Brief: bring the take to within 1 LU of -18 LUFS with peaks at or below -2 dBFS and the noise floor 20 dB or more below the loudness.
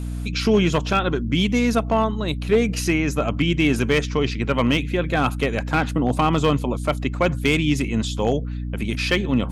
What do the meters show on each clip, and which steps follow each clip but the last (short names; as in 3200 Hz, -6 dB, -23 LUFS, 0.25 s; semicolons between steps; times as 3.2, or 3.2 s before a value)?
clipped 0.8%; flat tops at -10.0 dBFS; hum 60 Hz; harmonics up to 300 Hz; hum level -25 dBFS; loudness -21.5 LUFS; peak -10.0 dBFS; loudness target -18.0 LUFS
-> clip repair -10 dBFS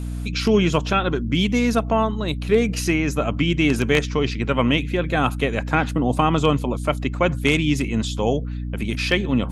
clipped 0.0%; hum 60 Hz; harmonics up to 300 Hz; hum level -25 dBFS
-> notches 60/120/180/240/300 Hz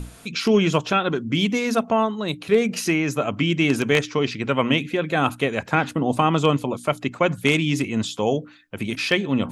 hum none; loudness -22.0 LUFS; peak -2.0 dBFS; loudness target -18.0 LUFS
-> gain +4 dB; limiter -2 dBFS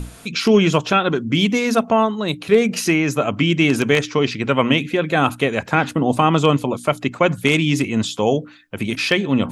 loudness -18.0 LUFS; peak -2.0 dBFS; noise floor -41 dBFS